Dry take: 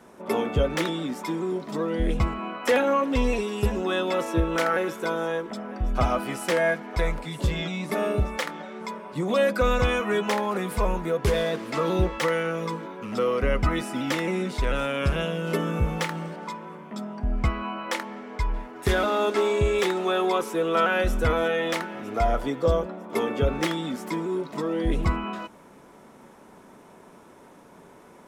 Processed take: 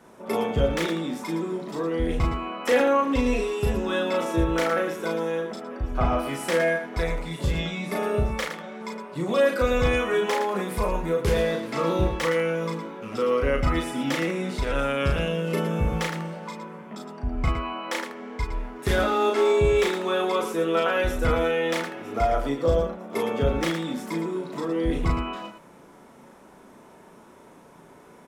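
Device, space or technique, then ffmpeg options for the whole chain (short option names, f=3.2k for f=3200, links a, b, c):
slapback doubling: -filter_complex "[0:a]asplit=3[a][b][c];[b]adelay=36,volume=-3dB[d];[c]adelay=113,volume=-9dB[e];[a][d][e]amix=inputs=3:normalize=0,asettb=1/sr,asplit=3[f][g][h];[f]atrim=end=5.604[i];[g]atrim=start=5.6:end=6.19,asetpts=PTS-STARTPTS,afade=t=in:d=0.004:c=qsin,afade=t=out:st=0.586:d=0.004:c=qsin,acrossover=split=3100[j][k];[k]acompressor=threshold=-55dB:ratio=4:attack=1:release=60[l];[j][l]amix=inputs=2:normalize=0[m];[h]atrim=start=6.186[n];[i][m]acrossfade=d=0.004:c1=hsin:c2=qsin[o];[o][n]acrossfade=d=0.004:c1=qsin:c2=hsin,volume=-2dB"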